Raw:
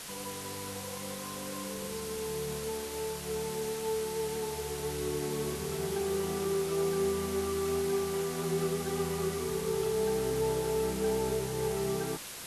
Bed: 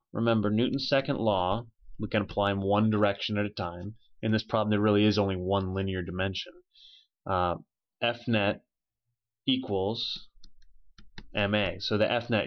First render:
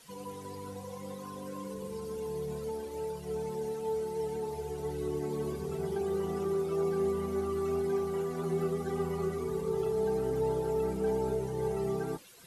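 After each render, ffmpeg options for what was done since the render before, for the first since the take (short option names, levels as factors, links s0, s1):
-af "afftdn=nr=16:nf=-41"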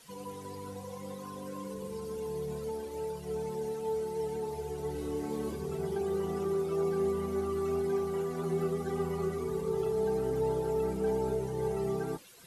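-filter_complex "[0:a]asettb=1/sr,asplit=3[s0][s1][s2];[s0]atrim=end=4.924[s3];[s1]atrim=start=4.92:end=5.55,asetpts=PTS-STARTPTS,afade=t=in:d=0.004:c=qsin,afade=t=out:st=0.626:d=0.004:c=qsin,asplit=2[s4][s5];[s5]adelay=31,volume=0.596[s6];[s4][s6]amix=inputs=2:normalize=0,atrim=end_sample=27783[s7];[s2]atrim=start=5.546[s8];[s3][s7]acrossfade=d=0.004:c1=hsin:c2=qsin[s9];[s9][s8]acrossfade=d=0.004:c1=qsin:c2=hsin"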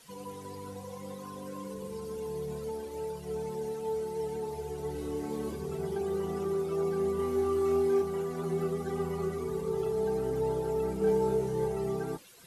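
-filter_complex "[0:a]asettb=1/sr,asplit=3[s0][s1][s2];[s0]atrim=end=7.164[s3];[s1]atrim=start=7.16:end=8.02,asetpts=PTS-STARTPTS,afade=t=in:d=0.004:c=qsin,afade=t=out:st=0.856:d=0.004:c=qsin,asplit=2[s4][s5];[s5]adelay=28,volume=0.75[s6];[s4][s6]amix=inputs=2:normalize=0,atrim=end_sample=37926[s7];[s2]atrim=start=8.016[s8];[s3][s7]acrossfade=d=0.004:c1=hsin:c2=qsin[s9];[s9][s8]acrossfade=d=0.004:c1=qsin:c2=hsin,asettb=1/sr,asplit=3[s10][s11][s12];[s10]atrim=end=10.994[s13];[s11]atrim=start=10.99:end=11.65,asetpts=PTS-STARTPTS,afade=t=in:d=0.004:c=qsin,afade=t=out:st=0.656:d=0.004:c=qsin,asplit=2[s14][s15];[s15]adelay=25,volume=0.708[s16];[s14][s16]amix=inputs=2:normalize=0,atrim=end_sample=29106[s17];[s12]atrim=start=11.646[s18];[s13][s17]acrossfade=d=0.004:c1=hsin:c2=qsin[s19];[s19][s18]acrossfade=d=0.004:c1=qsin:c2=hsin"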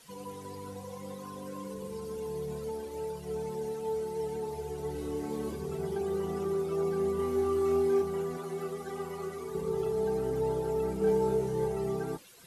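-filter_complex "[0:a]asettb=1/sr,asplit=3[s0][s1][s2];[s0]atrim=end=8.374[s3];[s1]atrim=start=8.37:end=9.55,asetpts=PTS-STARTPTS,afade=t=in:d=0.004:c=qsin,afade=t=out:st=1.176:d=0.004:c=qsin,lowshelf=f=310:g=-12[s4];[s2]atrim=start=9.546[s5];[s3][s4]acrossfade=d=0.004:c1=hsin:c2=qsin[s6];[s6][s5]acrossfade=d=0.004:c1=qsin:c2=hsin"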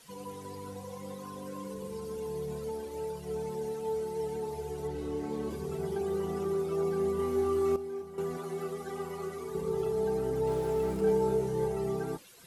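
-filter_complex "[0:a]asettb=1/sr,asplit=3[s0][s1][s2];[s0]atrim=end=4.874[s3];[s1]atrim=start=4.87:end=5.51,asetpts=PTS-STARTPTS,afade=t=in:d=0.004:c=qsin,afade=t=out:st=0.636:d=0.004:c=qsin,highshelf=f=8100:g=-10.5[s4];[s2]atrim=start=5.506[s5];[s3][s4]acrossfade=d=0.004:c1=hsin:c2=qsin[s6];[s6][s5]acrossfade=d=0.004:c1=qsin:c2=hsin,asettb=1/sr,asplit=3[s7][s8][s9];[s7]atrim=end=10.474[s10];[s8]atrim=start=10.47:end=11.01,asetpts=PTS-STARTPTS,afade=t=in:d=0.004:c=qsin,afade=t=out:st=0.536:d=0.004:c=qsin,aeval=exprs='val(0)+0.5*0.0075*sgn(val(0))':c=same[s11];[s9]atrim=start=11.006[s12];[s10][s11]acrossfade=d=0.004:c1=hsin:c2=qsin[s13];[s13][s12]acrossfade=d=0.004:c1=qsin:c2=hsin,asplit=3[s14][s15][s16];[s14]atrim=end=7.762[s17];[s15]atrim=start=7.758:end=8.182,asetpts=PTS-STARTPTS,volume=0.266[s18];[s16]atrim=start=8.178[s19];[s17][s18]acrossfade=d=0.004:c1=hsin:c2=hsin[s20];[s20][s19]acrossfade=d=0.004:c1=hsin:c2=hsin"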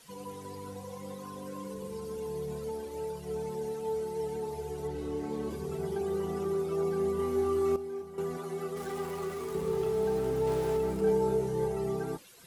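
-filter_complex "[0:a]asettb=1/sr,asplit=3[s0][s1][s2];[s0]atrim=end=8.764[s3];[s1]atrim=start=8.76:end=10.77,asetpts=PTS-STARTPTS,afade=t=in:d=0.004:c=qsin,afade=t=out:st=2.006:d=0.004:c=qsin,aeval=exprs='val(0)+0.5*0.00841*sgn(val(0))':c=same[s4];[s2]atrim=start=10.766[s5];[s3][s4]acrossfade=d=0.004:c1=hsin:c2=qsin[s6];[s6][s5]acrossfade=d=0.004:c1=qsin:c2=hsin"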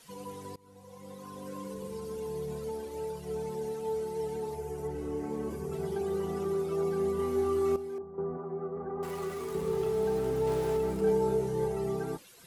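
-filter_complex "[0:a]asettb=1/sr,asplit=3[s0][s1][s2];[s0]atrim=end=4.554[s3];[s1]atrim=start=4.55:end=5.73,asetpts=PTS-STARTPTS,afade=t=in:d=0.004:c=qsin,afade=t=out:st=1.176:d=0.004:c=qsin,equalizer=f=3800:t=o:w=0.65:g=-10[s4];[s2]atrim=start=5.726[s5];[s3][s4]acrossfade=d=0.004:c1=hsin:c2=qsin[s6];[s6][s5]acrossfade=d=0.004:c1=qsin:c2=hsin,asettb=1/sr,asplit=3[s7][s8][s9];[s7]atrim=end=7.984[s10];[s8]atrim=start=7.98:end=9.03,asetpts=PTS-STARTPTS,afade=t=in:d=0.004:c=qsin,afade=t=out:st=1.046:d=0.004:c=qsin,lowpass=f=1200:w=0.5412,lowpass=f=1200:w=1.3066[s11];[s9]atrim=start=9.026[s12];[s10][s11]acrossfade=d=0.004:c1=hsin:c2=qsin[s13];[s13][s12]acrossfade=d=0.004:c1=qsin:c2=hsin,asplit=2[s14][s15];[s14]atrim=end=0.56,asetpts=PTS-STARTPTS,afade=t=out:st=0.556:d=0.004:c=hsin:silence=0.0668344[s16];[s15]atrim=start=0.56,asetpts=PTS-STARTPTS,afade=t=in:d=0.96:silence=0.0668344[s17];[s16][s17]concat=n=2:v=0:a=1"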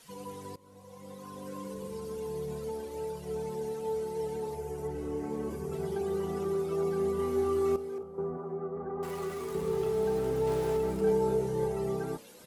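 -filter_complex "[0:a]asplit=4[s0][s1][s2][s3];[s1]adelay=270,afreqshift=57,volume=0.0631[s4];[s2]adelay=540,afreqshift=114,volume=0.0316[s5];[s3]adelay=810,afreqshift=171,volume=0.0158[s6];[s0][s4][s5][s6]amix=inputs=4:normalize=0"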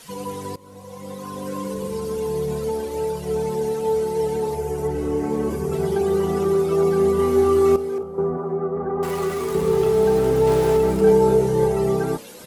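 -af "volume=3.98"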